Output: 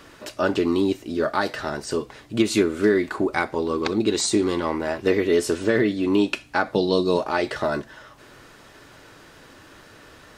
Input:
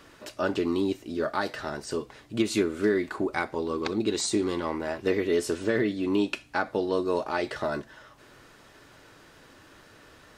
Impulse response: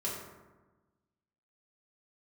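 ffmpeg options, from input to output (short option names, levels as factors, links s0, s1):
-filter_complex "[0:a]asettb=1/sr,asplit=3[s0][s1][s2];[s0]atrim=end=6.754[s3];[s1]atrim=start=6.75:end=7.17,asetpts=PTS-STARTPTS,afade=t=in:d=0.004:c=qsin,afade=t=out:st=0.416:d=0.004:c=qsin,equalizer=f=160:t=o:w=0.67:g=10,equalizer=f=1600:t=o:w=0.67:g=-12,equalizer=f=4000:t=o:w=0.67:g=12[s4];[s2]atrim=start=7.166[s5];[s3][s4]acrossfade=d=0.004:c1=hsin:c2=qsin[s6];[s6][s5]acrossfade=d=0.004:c1=qsin:c2=hsin,volume=1.88"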